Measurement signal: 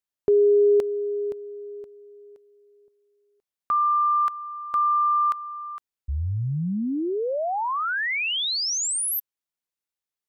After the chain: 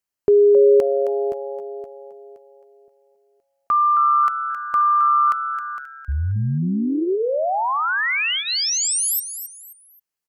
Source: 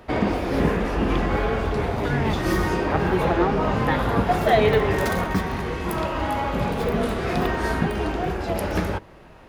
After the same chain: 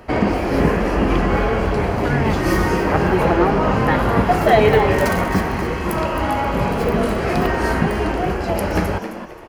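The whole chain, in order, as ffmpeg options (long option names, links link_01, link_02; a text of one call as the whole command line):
ffmpeg -i in.wav -filter_complex "[0:a]bandreject=frequency=3600:width=5.8,asplit=2[link_01][link_02];[link_02]asplit=3[link_03][link_04][link_05];[link_03]adelay=266,afreqshift=140,volume=-10.5dB[link_06];[link_04]adelay=532,afreqshift=280,volume=-20.4dB[link_07];[link_05]adelay=798,afreqshift=420,volume=-30.3dB[link_08];[link_06][link_07][link_08]amix=inputs=3:normalize=0[link_09];[link_01][link_09]amix=inputs=2:normalize=0,volume=4.5dB" out.wav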